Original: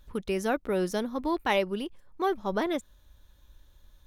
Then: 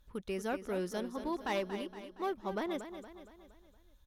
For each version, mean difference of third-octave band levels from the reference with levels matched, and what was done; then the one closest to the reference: 4.0 dB: one-sided clip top -23 dBFS; feedback delay 233 ms, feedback 50%, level -10.5 dB; trim -8 dB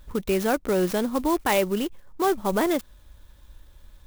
5.5 dB: in parallel at +2.5 dB: peak limiter -24 dBFS, peak gain reduction 10.5 dB; on the sum: sampling jitter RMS 0.04 ms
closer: first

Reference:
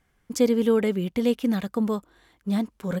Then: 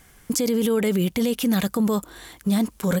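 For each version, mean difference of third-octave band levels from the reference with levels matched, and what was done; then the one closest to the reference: 6.5 dB: in parallel at +1 dB: compression, threshold -28 dBFS, peak gain reduction 13 dB; on the sum: treble shelf 5.3 kHz +10 dB; peak limiter -22 dBFS, peak gain reduction 16.5 dB; peaking EQ 10 kHz +3.5 dB 1.6 oct; trim +7.5 dB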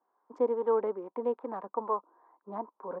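10.5 dB: local Wiener filter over 15 samples; high-pass 340 Hz 24 dB/octave; harmonic tremolo 2.4 Hz, depth 50%, crossover 430 Hz; resonant low-pass 990 Hz, resonance Q 6.4; trim -4 dB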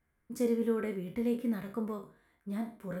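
4.0 dB: spectral sustain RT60 0.40 s; high-order bell 4.5 kHz -9.5 dB; band-stop 790 Hz, Q 12; feedback comb 78 Hz, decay 0.2 s, harmonics all, mix 70%; trim -6 dB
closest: third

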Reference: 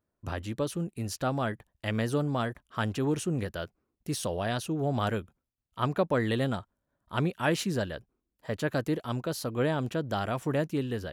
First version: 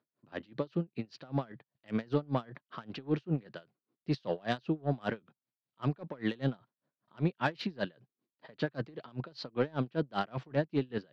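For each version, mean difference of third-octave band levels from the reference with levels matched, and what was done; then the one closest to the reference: 10.0 dB: Chebyshev band-pass 130–4600 Hz, order 4; in parallel at +1 dB: level held to a coarse grid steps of 18 dB; on the sum: saturation -16.5 dBFS, distortion -19 dB; logarithmic tremolo 5.1 Hz, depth 29 dB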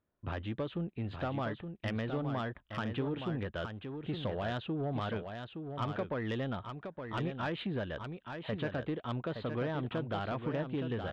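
7.0 dB: elliptic low-pass 3.6 kHz, stop band 40 dB; compression 10:1, threshold -30 dBFS, peak gain reduction 9.5 dB; saturation -27 dBFS, distortion -19 dB; delay 868 ms -7 dB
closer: second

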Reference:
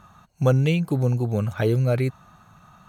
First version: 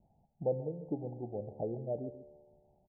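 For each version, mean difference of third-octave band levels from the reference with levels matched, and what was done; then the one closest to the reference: 8.5 dB: harmonic-percussive split harmonic -14 dB; steep low-pass 840 Hz 96 dB/octave; feedback comb 74 Hz, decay 1.6 s, harmonics all, mix 70%; echo from a far wall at 24 m, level -14 dB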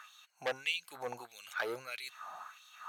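14.0 dB: reverse; compression, threshold -27 dBFS, peak gain reduction 13 dB; reverse; LFO high-pass sine 1.6 Hz 700–3600 Hz; transformer saturation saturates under 2.1 kHz; trim +2.5 dB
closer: first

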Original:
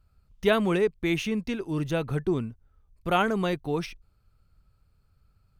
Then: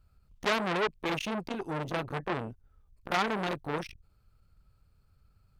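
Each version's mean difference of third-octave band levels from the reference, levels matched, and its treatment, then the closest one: 6.0 dB: transformer saturation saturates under 3.1 kHz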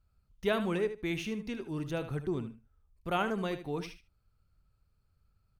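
2.5 dB: feedback delay 76 ms, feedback 17%, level -11 dB; trim -7.5 dB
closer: second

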